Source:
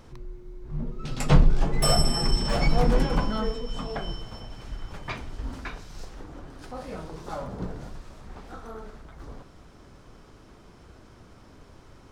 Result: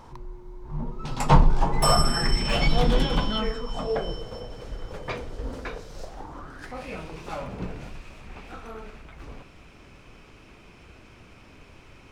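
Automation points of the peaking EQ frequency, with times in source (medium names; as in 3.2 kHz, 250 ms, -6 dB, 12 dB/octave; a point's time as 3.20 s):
peaking EQ +14.5 dB 0.52 oct
1.83 s 930 Hz
2.68 s 3.4 kHz
3.34 s 3.4 kHz
3.89 s 490 Hz
5.94 s 490 Hz
6.83 s 2.5 kHz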